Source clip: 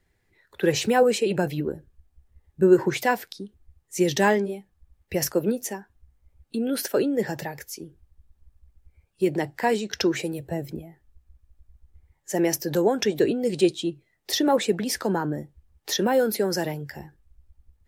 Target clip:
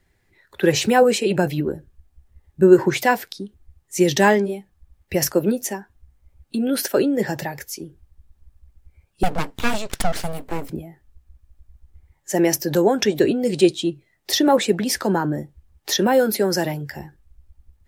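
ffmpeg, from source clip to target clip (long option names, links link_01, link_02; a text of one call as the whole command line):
ffmpeg -i in.wav -filter_complex "[0:a]bandreject=frequency=460:width=12,asettb=1/sr,asplit=3[link_01][link_02][link_03];[link_01]atrim=end=9.234[link_04];[link_02]atrim=start=9.23:end=10.7,asetpts=PTS-STARTPTS,afade=type=in:duration=0.004:curve=qsin,afade=type=out:start_time=1.466:duration=0.004:curve=qsin,aeval=exprs='abs(val(0))':channel_layout=same[link_05];[link_03]atrim=start=10.696[link_06];[link_04][link_05]acrossfade=duration=0.004:curve1=hsin:curve2=qsin[link_07];[link_07][link_06]acrossfade=duration=0.004:curve1=qsin:curve2=hsin,volume=5dB" out.wav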